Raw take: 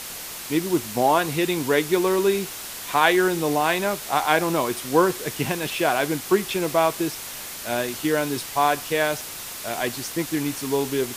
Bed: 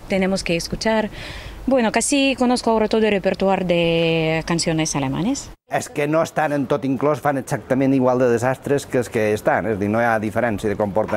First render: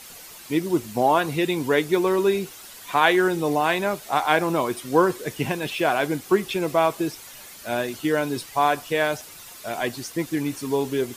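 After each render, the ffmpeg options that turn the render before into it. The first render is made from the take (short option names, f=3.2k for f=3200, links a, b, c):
-af "afftdn=nr=10:nf=-35"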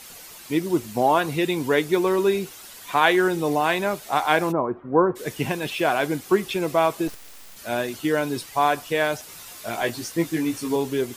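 -filter_complex "[0:a]asplit=3[a][b][c];[a]afade=t=out:st=4.51:d=0.02[d];[b]lowpass=f=1.3k:w=0.5412,lowpass=f=1.3k:w=1.3066,afade=t=in:st=4.51:d=0.02,afade=t=out:st=5.15:d=0.02[e];[c]afade=t=in:st=5.15:d=0.02[f];[d][e][f]amix=inputs=3:normalize=0,asplit=3[g][h][i];[g]afade=t=out:st=7.07:d=0.02[j];[h]aeval=exprs='abs(val(0))':c=same,afade=t=in:st=7.07:d=0.02,afade=t=out:st=7.55:d=0.02[k];[i]afade=t=in:st=7.55:d=0.02[l];[j][k][l]amix=inputs=3:normalize=0,asettb=1/sr,asplit=3[m][n][o];[m]atrim=end=9.274[p];[n]atrim=start=9.27:end=10.76,asetpts=PTS-STARTPTS,afade=t=in:d=0.004:c=qsin,afade=t=out:st=1.486:d=0.004:c=qsin,asplit=2[q][r];[r]adelay=18,volume=-4dB[s];[q][s]amix=inputs=2:normalize=0,atrim=end_sample=65709[t];[o]atrim=start=10.756[u];[p][t]acrossfade=d=0.004:c1=hsin:c2=qsin[v];[v][u]acrossfade=d=0.004:c1=qsin:c2=hsin"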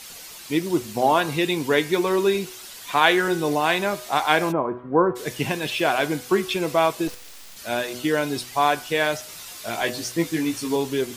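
-af "equalizer=f=4.3k:w=0.61:g=4.5,bandreject=f=123.4:t=h:w=4,bandreject=f=246.8:t=h:w=4,bandreject=f=370.2:t=h:w=4,bandreject=f=493.6:t=h:w=4,bandreject=f=617:t=h:w=4,bandreject=f=740.4:t=h:w=4,bandreject=f=863.8:t=h:w=4,bandreject=f=987.2:t=h:w=4,bandreject=f=1.1106k:t=h:w=4,bandreject=f=1.234k:t=h:w=4,bandreject=f=1.3574k:t=h:w=4,bandreject=f=1.4808k:t=h:w=4,bandreject=f=1.6042k:t=h:w=4,bandreject=f=1.7276k:t=h:w=4,bandreject=f=1.851k:t=h:w=4,bandreject=f=1.9744k:t=h:w=4,bandreject=f=2.0978k:t=h:w=4,bandreject=f=2.2212k:t=h:w=4,bandreject=f=2.3446k:t=h:w=4,bandreject=f=2.468k:t=h:w=4,bandreject=f=2.5914k:t=h:w=4,bandreject=f=2.7148k:t=h:w=4,bandreject=f=2.8382k:t=h:w=4,bandreject=f=2.9616k:t=h:w=4,bandreject=f=3.085k:t=h:w=4,bandreject=f=3.2084k:t=h:w=4"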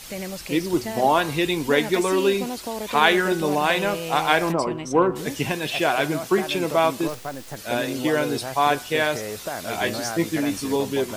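-filter_complex "[1:a]volume=-13.5dB[a];[0:a][a]amix=inputs=2:normalize=0"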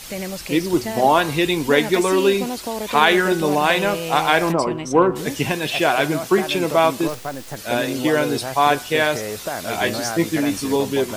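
-af "volume=3.5dB,alimiter=limit=-1dB:level=0:latency=1"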